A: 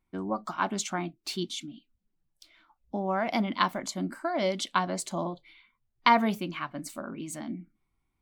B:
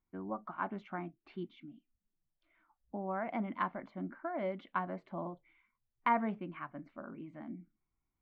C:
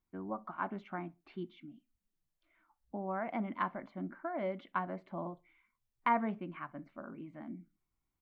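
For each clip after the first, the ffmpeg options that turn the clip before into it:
ffmpeg -i in.wav -af "lowpass=frequency=2100:width=0.5412,lowpass=frequency=2100:width=1.3066,volume=-8.5dB" out.wav
ffmpeg -i in.wav -filter_complex "[0:a]asplit=2[link_01][link_02];[link_02]adelay=64,lowpass=frequency=2100:poles=1,volume=-24dB,asplit=2[link_03][link_04];[link_04]adelay=64,lowpass=frequency=2100:poles=1,volume=0.32[link_05];[link_01][link_03][link_05]amix=inputs=3:normalize=0" out.wav

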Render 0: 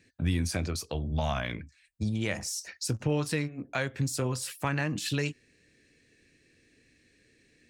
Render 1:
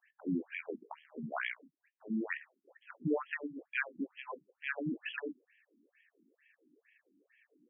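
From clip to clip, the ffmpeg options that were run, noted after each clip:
ffmpeg -i in.wav -af "acrusher=bits=6:mode=log:mix=0:aa=0.000001,afftfilt=real='re*between(b*sr/1024,240*pow(2400/240,0.5+0.5*sin(2*PI*2.2*pts/sr))/1.41,240*pow(2400/240,0.5+0.5*sin(2*PI*2.2*pts/sr))*1.41)':imag='im*between(b*sr/1024,240*pow(2400/240,0.5+0.5*sin(2*PI*2.2*pts/sr))/1.41,240*pow(2400/240,0.5+0.5*sin(2*PI*2.2*pts/sr))*1.41)':win_size=1024:overlap=0.75,volume=1dB" out.wav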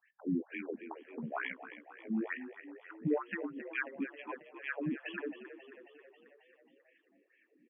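ffmpeg -i in.wav -filter_complex "[0:a]aemphasis=mode=reproduction:type=75fm,asplit=2[link_01][link_02];[link_02]asplit=7[link_03][link_04][link_05][link_06][link_07][link_08][link_09];[link_03]adelay=270,afreqshift=34,volume=-12.5dB[link_10];[link_04]adelay=540,afreqshift=68,volume=-16.7dB[link_11];[link_05]adelay=810,afreqshift=102,volume=-20.8dB[link_12];[link_06]adelay=1080,afreqshift=136,volume=-25dB[link_13];[link_07]adelay=1350,afreqshift=170,volume=-29.1dB[link_14];[link_08]adelay=1620,afreqshift=204,volume=-33.3dB[link_15];[link_09]adelay=1890,afreqshift=238,volume=-37.4dB[link_16];[link_10][link_11][link_12][link_13][link_14][link_15][link_16]amix=inputs=7:normalize=0[link_17];[link_01][link_17]amix=inputs=2:normalize=0" out.wav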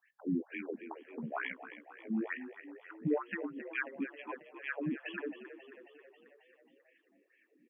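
ffmpeg -i in.wav -af "highpass=63" out.wav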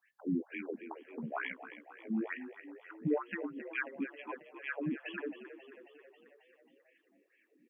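ffmpeg -i in.wav -af "bandreject=frequency=1800:width=29" out.wav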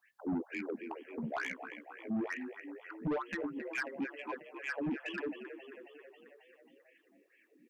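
ffmpeg -i in.wav -af "asoftclip=type=tanh:threshold=-33.5dB,volume=3.5dB" out.wav

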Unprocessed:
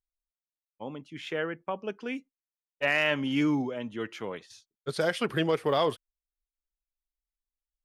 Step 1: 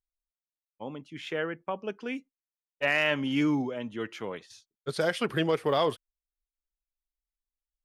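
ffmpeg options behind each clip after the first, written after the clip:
ffmpeg -i in.wav -af anull out.wav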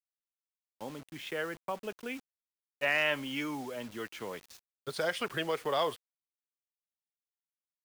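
ffmpeg -i in.wav -filter_complex "[0:a]acrossover=split=500|1100[link_01][link_02][link_03];[link_01]acompressor=threshold=-39dB:ratio=4[link_04];[link_04][link_02][link_03]amix=inputs=3:normalize=0,acrusher=bits=7:mix=0:aa=0.000001,volume=-2.5dB" out.wav

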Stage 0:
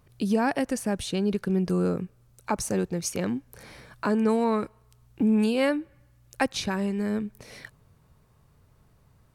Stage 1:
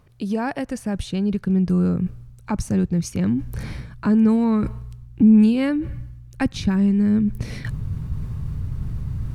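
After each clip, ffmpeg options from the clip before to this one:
ffmpeg -i in.wav -af "highshelf=frequency=6100:gain=-7.5,areverse,acompressor=mode=upward:threshold=-26dB:ratio=2.5,areverse,asubboost=boost=8:cutoff=200" out.wav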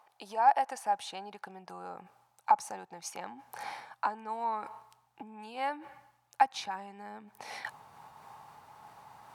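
ffmpeg -i in.wav -af "acompressor=threshold=-23dB:ratio=6,highpass=frequency=820:width_type=q:width=9.4,volume=-5dB" out.wav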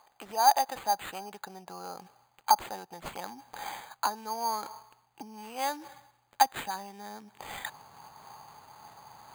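ffmpeg -i in.wav -af "acrusher=samples=8:mix=1:aa=0.000001,volume=2dB" out.wav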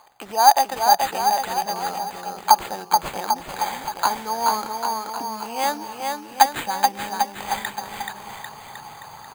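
ffmpeg -i in.wav -af "aecho=1:1:430|795.5|1106|1370|1595:0.631|0.398|0.251|0.158|0.1,volume=8.5dB" out.wav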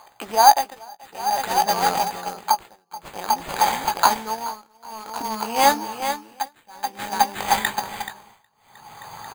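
ffmpeg -i in.wav -filter_complex "[0:a]asplit=2[link_01][link_02];[link_02]acrusher=bits=3:mix=0:aa=0.000001,volume=-10dB[link_03];[link_01][link_03]amix=inputs=2:normalize=0,tremolo=f=0.53:d=0.98,asplit=2[link_04][link_05];[link_05]adelay=18,volume=-10.5dB[link_06];[link_04][link_06]amix=inputs=2:normalize=0,volume=4dB" out.wav

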